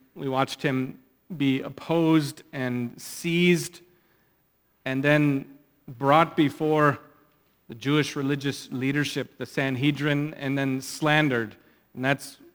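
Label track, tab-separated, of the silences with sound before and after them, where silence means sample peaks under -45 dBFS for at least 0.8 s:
3.820000	4.860000	silence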